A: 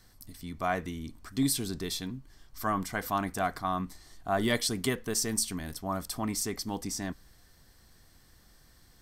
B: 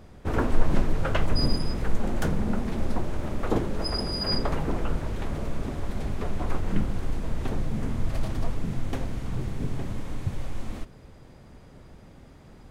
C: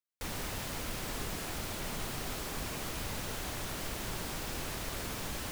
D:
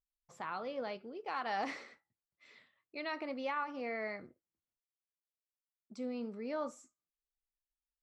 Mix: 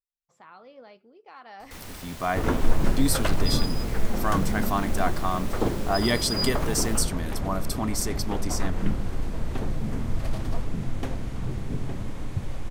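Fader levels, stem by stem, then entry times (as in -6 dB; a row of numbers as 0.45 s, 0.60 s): +3.0 dB, 0.0 dB, -3.5 dB, -8.0 dB; 1.60 s, 2.10 s, 1.50 s, 0.00 s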